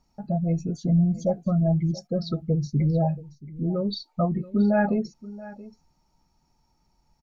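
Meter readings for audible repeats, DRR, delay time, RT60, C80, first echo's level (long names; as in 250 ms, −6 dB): 1, no reverb audible, 678 ms, no reverb audible, no reverb audible, −18.5 dB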